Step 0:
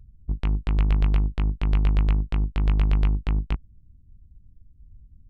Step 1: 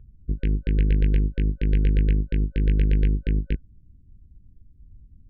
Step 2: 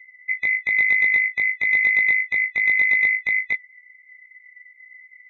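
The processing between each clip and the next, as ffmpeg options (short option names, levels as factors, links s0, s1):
-af "lowpass=2900,afftfilt=real='re*(1-between(b*sr/4096,550,1500))':imag='im*(1-between(b*sr/4096,550,1500))':win_size=4096:overlap=0.75,equalizer=f=470:t=o:w=2.9:g=6"
-af "afftfilt=real='real(if(lt(b,920),b+92*(1-2*mod(floor(b/92),2)),b),0)':imag='imag(if(lt(b,920),b+92*(1-2*mod(floor(b/92),2)),b),0)':win_size=2048:overlap=0.75"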